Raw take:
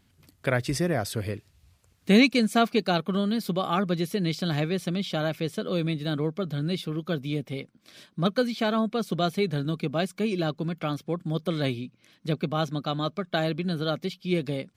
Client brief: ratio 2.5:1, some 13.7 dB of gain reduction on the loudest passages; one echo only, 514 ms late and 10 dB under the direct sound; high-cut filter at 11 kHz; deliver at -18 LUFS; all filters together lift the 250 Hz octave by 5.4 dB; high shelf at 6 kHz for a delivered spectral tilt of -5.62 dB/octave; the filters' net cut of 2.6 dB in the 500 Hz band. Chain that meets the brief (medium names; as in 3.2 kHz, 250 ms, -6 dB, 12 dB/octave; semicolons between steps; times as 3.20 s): low-pass 11 kHz; peaking EQ 250 Hz +8.5 dB; peaking EQ 500 Hz -6.5 dB; treble shelf 6 kHz +8.5 dB; compression 2.5:1, threshold -30 dBFS; delay 514 ms -10 dB; trim +13.5 dB